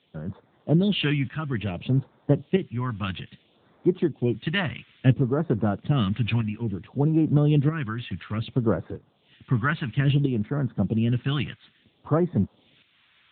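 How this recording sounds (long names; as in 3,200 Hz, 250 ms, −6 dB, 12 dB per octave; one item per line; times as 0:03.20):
a quantiser's noise floor 8 bits, dither triangular
tremolo saw up 0.78 Hz, depth 55%
phaser sweep stages 2, 0.59 Hz, lowest notch 440–2,700 Hz
AMR narrowband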